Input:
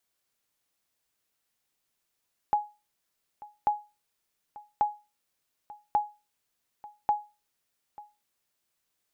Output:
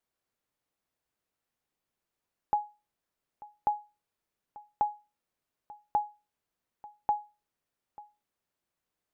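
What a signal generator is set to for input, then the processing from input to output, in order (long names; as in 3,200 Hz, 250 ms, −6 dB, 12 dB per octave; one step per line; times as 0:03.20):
ping with an echo 835 Hz, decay 0.28 s, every 1.14 s, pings 5, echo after 0.89 s, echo −20.5 dB −16.5 dBFS
high-shelf EQ 2,100 Hz −11.5 dB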